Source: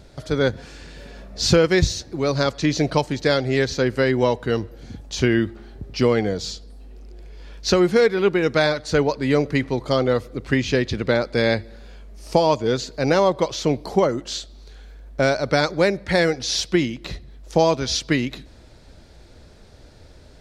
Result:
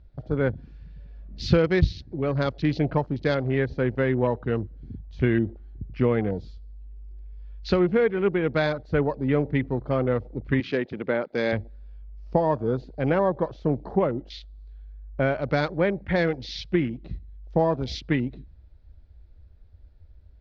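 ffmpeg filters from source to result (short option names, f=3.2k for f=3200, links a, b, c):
-filter_complex "[0:a]asettb=1/sr,asplit=3[a][b][c];[a]atrim=end=10.604[d];[b]atrim=start=10.6:end=11.53,asetpts=PTS-STARTPTS,afade=t=in:d=0.004:c=qsin,afade=t=out:st=0.926:d=0.004:c=qsin,highpass=240[e];[c]atrim=start=11.526[f];[d][e]acrossfade=d=0.004:c1=hsin:c2=qsin[g];[g][f]acrossfade=d=0.004:c1=qsin:c2=hsin,afwtdn=0.0282,lowpass=f=5.1k:w=0.5412,lowpass=f=5.1k:w=1.3066,bass=f=250:g=5,treble=f=4k:g=-8,volume=-5.5dB"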